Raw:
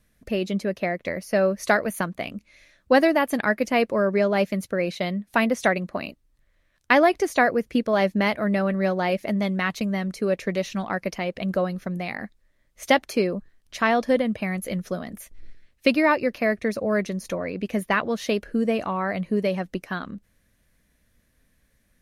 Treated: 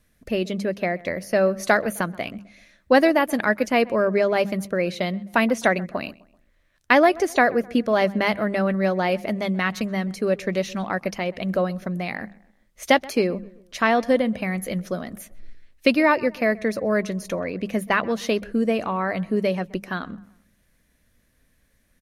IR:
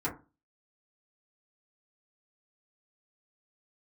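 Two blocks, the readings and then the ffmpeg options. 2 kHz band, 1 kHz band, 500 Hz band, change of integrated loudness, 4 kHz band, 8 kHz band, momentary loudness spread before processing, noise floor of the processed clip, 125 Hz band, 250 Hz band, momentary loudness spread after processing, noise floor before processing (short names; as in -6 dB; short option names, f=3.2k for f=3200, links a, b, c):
+1.5 dB, +1.5 dB, +1.5 dB, +1.5 dB, +1.5 dB, +1.5 dB, 12 LU, -64 dBFS, +0.5 dB, +1.0 dB, 12 LU, -66 dBFS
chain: -filter_complex "[0:a]bandreject=f=50:t=h:w=6,bandreject=f=100:t=h:w=6,bandreject=f=150:t=h:w=6,bandreject=f=200:t=h:w=6,asplit=2[a][b];[b]adelay=129,lowpass=f=2k:p=1,volume=-21dB,asplit=2[c][d];[d]adelay=129,lowpass=f=2k:p=1,volume=0.46,asplit=2[e][f];[f]adelay=129,lowpass=f=2k:p=1,volume=0.46[g];[a][c][e][g]amix=inputs=4:normalize=0,volume=1.5dB"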